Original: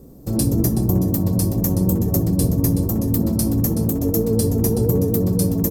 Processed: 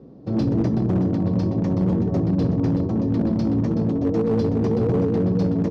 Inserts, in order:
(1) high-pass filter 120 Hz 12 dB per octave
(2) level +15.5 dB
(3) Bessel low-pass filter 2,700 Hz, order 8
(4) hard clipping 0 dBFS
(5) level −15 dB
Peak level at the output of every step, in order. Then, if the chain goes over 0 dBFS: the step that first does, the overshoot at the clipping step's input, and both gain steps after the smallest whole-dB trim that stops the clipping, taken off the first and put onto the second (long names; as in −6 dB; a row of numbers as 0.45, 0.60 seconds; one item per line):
−4.5, +11.0, +8.0, 0.0, −15.0 dBFS
step 2, 8.0 dB
step 2 +7.5 dB, step 5 −7 dB